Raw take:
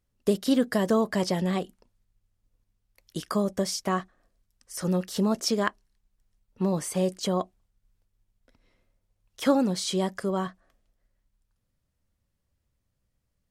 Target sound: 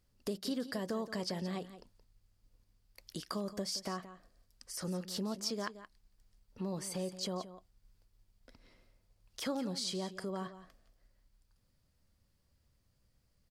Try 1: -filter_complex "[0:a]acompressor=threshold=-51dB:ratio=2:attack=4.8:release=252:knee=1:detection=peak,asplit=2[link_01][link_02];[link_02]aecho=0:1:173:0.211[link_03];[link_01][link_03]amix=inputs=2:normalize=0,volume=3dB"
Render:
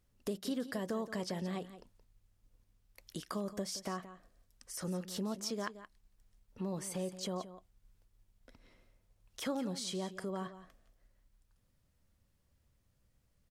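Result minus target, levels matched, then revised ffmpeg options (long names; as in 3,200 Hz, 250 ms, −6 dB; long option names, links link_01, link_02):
4,000 Hz band −3.0 dB
-filter_complex "[0:a]acompressor=threshold=-51dB:ratio=2:attack=4.8:release=252:knee=1:detection=peak,equalizer=frequency=4700:width=4.8:gain=8,asplit=2[link_01][link_02];[link_02]aecho=0:1:173:0.211[link_03];[link_01][link_03]amix=inputs=2:normalize=0,volume=3dB"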